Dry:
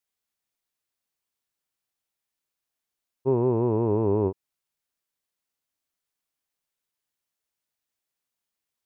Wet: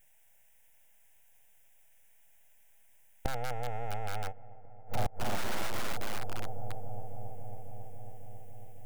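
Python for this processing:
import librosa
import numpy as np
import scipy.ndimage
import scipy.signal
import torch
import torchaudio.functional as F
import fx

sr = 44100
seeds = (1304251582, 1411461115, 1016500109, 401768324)

p1 = fx.high_shelf(x, sr, hz=2200.0, db=6.5)
p2 = np.abs(p1)
p3 = fx.fixed_phaser(p2, sr, hz=1200.0, stages=6)
p4 = p3 + fx.echo_filtered(p3, sr, ms=274, feedback_pct=85, hz=2100.0, wet_db=-21.5, dry=0)
p5 = fx.gate_flip(p4, sr, shuts_db=-33.0, range_db=-26)
p6 = (np.mod(10.0 ** (42.0 / 20.0) * p5 + 1.0, 2.0) - 1.0) / 10.0 ** (42.0 / 20.0)
p7 = p5 + F.gain(torch.from_numpy(p6), -6.0).numpy()
y = F.gain(torch.from_numpy(p7), 15.0).numpy()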